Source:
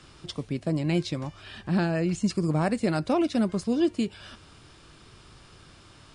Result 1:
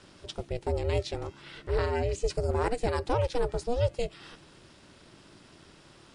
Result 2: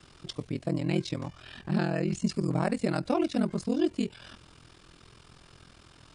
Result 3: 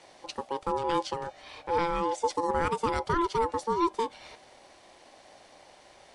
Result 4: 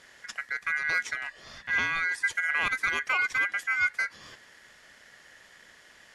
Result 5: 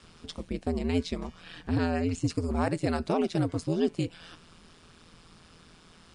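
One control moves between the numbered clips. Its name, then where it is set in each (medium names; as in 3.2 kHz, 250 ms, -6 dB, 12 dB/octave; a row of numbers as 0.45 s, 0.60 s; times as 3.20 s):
ring modulator, frequency: 240 Hz, 21 Hz, 680 Hz, 1.8 kHz, 83 Hz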